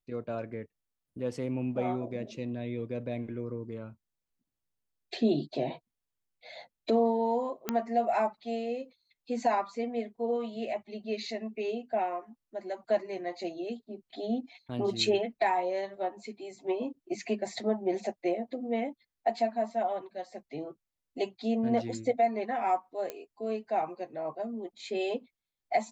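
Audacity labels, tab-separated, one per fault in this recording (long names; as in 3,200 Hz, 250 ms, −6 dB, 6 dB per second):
7.690000	7.690000	click −14 dBFS
23.100000	23.100000	click −22 dBFS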